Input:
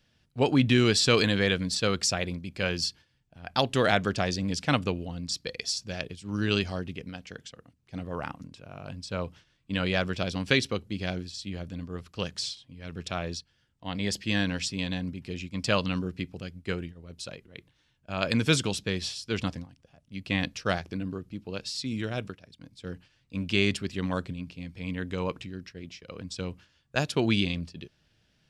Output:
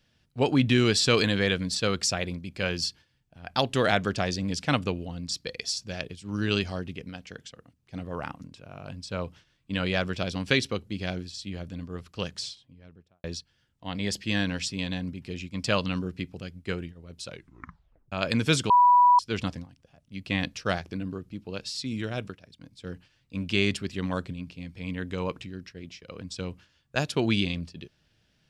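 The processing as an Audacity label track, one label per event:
12.250000	13.240000	fade out and dull
17.270000	17.270000	tape stop 0.85 s
18.700000	19.190000	beep over 981 Hz −14 dBFS

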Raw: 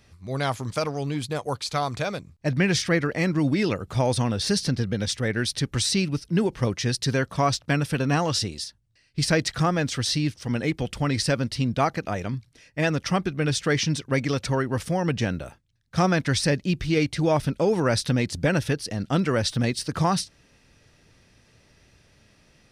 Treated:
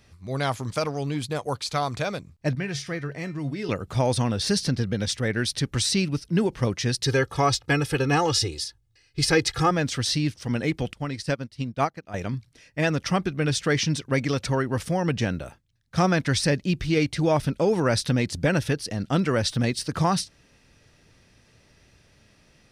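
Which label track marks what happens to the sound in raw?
2.550000	3.690000	tuned comb filter 140 Hz, decay 0.28 s, harmonics odd, mix 70%
7.040000	9.710000	comb filter 2.4 ms, depth 84%
10.930000	12.140000	expander for the loud parts 2.5 to 1, over −32 dBFS

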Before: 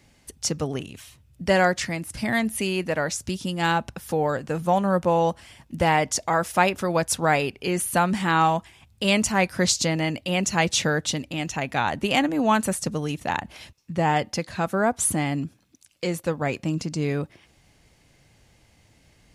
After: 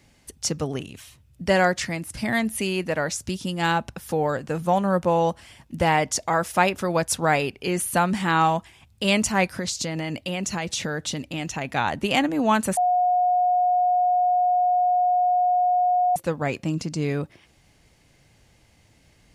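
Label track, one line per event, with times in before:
9.570000	11.650000	downward compressor 10 to 1, threshold −23 dBFS
12.770000	16.160000	beep over 722 Hz −17 dBFS

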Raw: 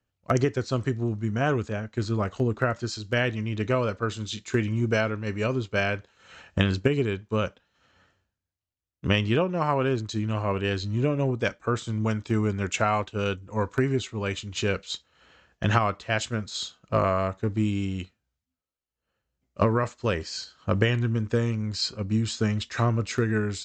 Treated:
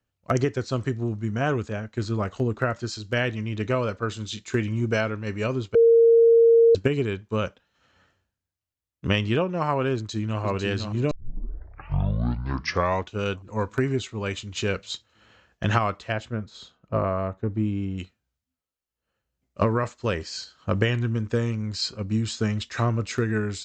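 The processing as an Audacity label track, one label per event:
5.750000	6.750000	beep over 461 Hz −12 dBFS
9.940000	10.420000	delay throw 500 ms, feedback 65%, level −6 dB
11.110000	11.110000	tape start 2.07 s
16.120000	17.980000	low-pass filter 1,000 Hz 6 dB per octave

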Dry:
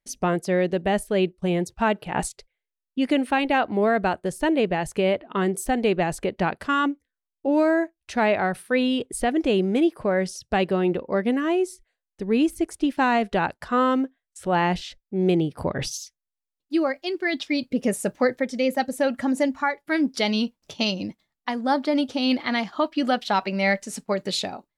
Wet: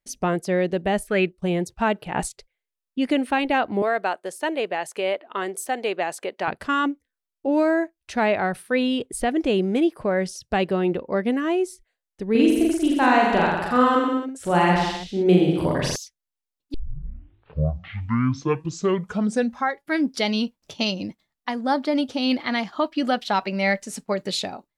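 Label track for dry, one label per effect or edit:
1.070000	1.280000	gain on a spectral selection 1,200–2,700 Hz +9 dB
3.820000	6.480000	high-pass filter 470 Hz
12.310000	15.960000	reverse bouncing-ball delay first gap 40 ms, each gap 1.1×, echoes 6, each echo −2 dB
16.740000	16.740000	tape start 3.11 s

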